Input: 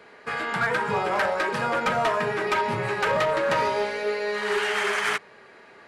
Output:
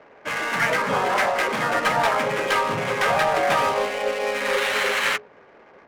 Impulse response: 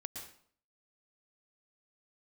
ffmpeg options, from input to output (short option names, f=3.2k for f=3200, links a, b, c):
-filter_complex "[0:a]asplit=3[a][b][c];[b]asetrate=55563,aresample=44100,atempo=0.793701,volume=-2dB[d];[c]asetrate=58866,aresample=44100,atempo=0.749154,volume=-4dB[e];[a][d][e]amix=inputs=3:normalize=0,bandreject=f=60:t=h:w=6,bandreject=f=120:t=h:w=6,bandreject=f=180:t=h:w=6,bandreject=f=240:t=h:w=6,bandreject=f=300:t=h:w=6,bandreject=f=360:t=h:w=6,bandreject=f=420:t=h:w=6,adynamicsmooth=sensitivity=6.5:basefreq=930"